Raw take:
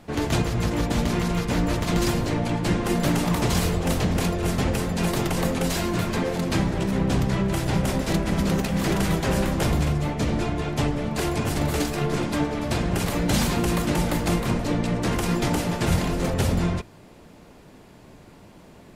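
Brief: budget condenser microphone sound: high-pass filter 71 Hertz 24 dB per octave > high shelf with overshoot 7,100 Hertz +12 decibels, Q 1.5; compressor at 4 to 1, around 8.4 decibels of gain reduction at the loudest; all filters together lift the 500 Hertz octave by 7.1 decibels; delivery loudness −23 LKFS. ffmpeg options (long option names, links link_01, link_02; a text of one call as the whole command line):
ffmpeg -i in.wav -af "equalizer=frequency=500:width_type=o:gain=9,acompressor=threshold=-26dB:ratio=4,highpass=frequency=71:width=0.5412,highpass=frequency=71:width=1.3066,highshelf=frequency=7100:width_type=q:width=1.5:gain=12,volume=5dB" out.wav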